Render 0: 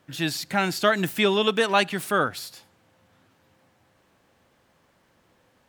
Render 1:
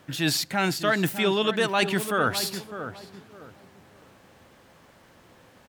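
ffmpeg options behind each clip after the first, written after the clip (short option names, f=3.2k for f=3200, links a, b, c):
-filter_complex "[0:a]areverse,acompressor=threshold=-30dB:ratio=5,areverse,asplit=2[a][b];[b]adelay=605,lowpass=f=1.1k:p=1,volume=-9dB,asplit=2[c][d];[d]adelay=605,lowpass=f=1.1k:p=1,volume=0.31,asplit=2[e][f];[f]adelay=605,lowpass=f=1.1k:p=1,volume=0.31,asplit=2[g][h];[h]adelay=605,lowpass=f=1.1k:p=1,volume=0.31[i];[a][c][e][g][i]amix=inputs=5:normalize=0,volume=8.5dB"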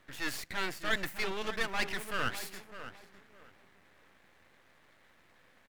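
-af "equalizer=f=125:t=o:w=1:g=-4,equalizer=f=2k:t=o:w=1:g=12,equalizer=f=4k:t=o:w=1:g=-7,aeval=exprs='max(val(0),0)':c=same,volume=-8.5dB"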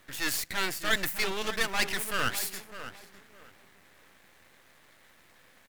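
-af "highshelf=f=5k:g=11,volume=3dB"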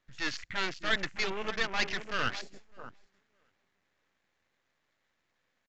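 -af "aresample=16000,aresample=44100,afwtdn=0.0126,volume=-2dB"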